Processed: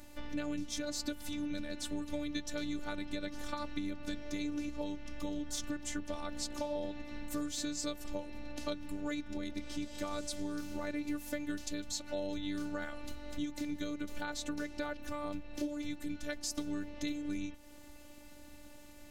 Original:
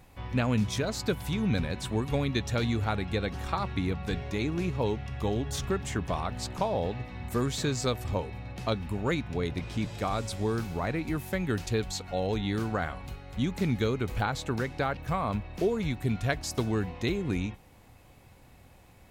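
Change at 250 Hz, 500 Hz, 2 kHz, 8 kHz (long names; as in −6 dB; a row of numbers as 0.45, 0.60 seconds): −6.0, −11.0, −8.5, −2.0 decibels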